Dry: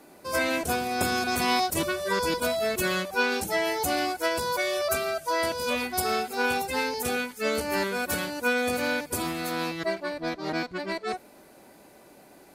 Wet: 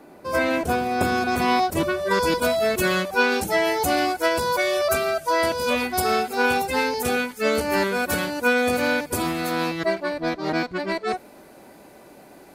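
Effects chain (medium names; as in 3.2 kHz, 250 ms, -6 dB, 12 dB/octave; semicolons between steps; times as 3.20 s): peaking EQ 10 kHz -11.5 dB 2.9 oct, from 2.11 s -4 dB; trim +6 dB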